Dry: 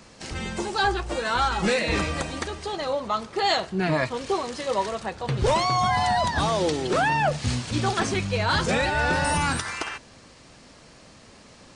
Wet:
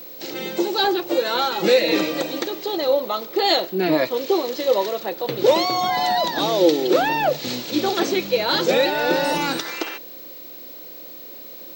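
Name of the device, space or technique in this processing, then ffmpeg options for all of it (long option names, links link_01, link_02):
old television with a line whistle: -af "highpass=frequency=190:width=0.5412,highpass=frequency=190:width=1.3066,equalizer=frequency=220:width_type=q:width=4:gain=-5,equalizer=frequency=330:width_type=q:width=4:gain=10,equalizer=frequency=520:width_type=q:width=4:gain=8,equalizer=frequency=1100:width_type=q:width=4:gain=-5,equalizer=frequency=1600:width_type=q:width=4:gain=-4,equalizer=frequency=3900:width_type=q:width=4:gain=7,lowpass=frequency=7100:width=0.5412,lowpass=frequency=7100:width=1.3066,aeval=exprs='val(0)+0.0126*sin(2*PI*15734*n/s)':channel_layout=same,volume=2dB"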